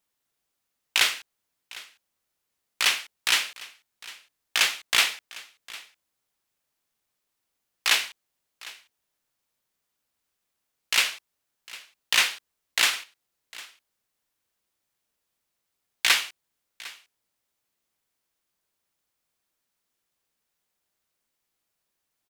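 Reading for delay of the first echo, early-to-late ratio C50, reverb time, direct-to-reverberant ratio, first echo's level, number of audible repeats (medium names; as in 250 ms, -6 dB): 754 ms, no reverb, no reverb, no reverb, -20.0 dB, 1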